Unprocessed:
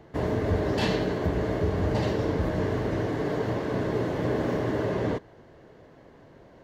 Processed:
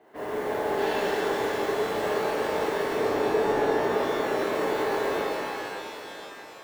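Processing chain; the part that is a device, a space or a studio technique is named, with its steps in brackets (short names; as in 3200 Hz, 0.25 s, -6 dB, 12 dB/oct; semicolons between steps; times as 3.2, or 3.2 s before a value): carbon microphone (BPF 400–3000 Hz; soft clip -26.5 dBFS, distortion -16 dB; modulation noise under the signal 23 dB); 2.95–3.81 tilt shelf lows +6.5 dB, about 1100 Hz; shimmer reverb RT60 3.6 s, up +12 st, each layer -8 dB, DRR -9.5 dB; gain -5 dB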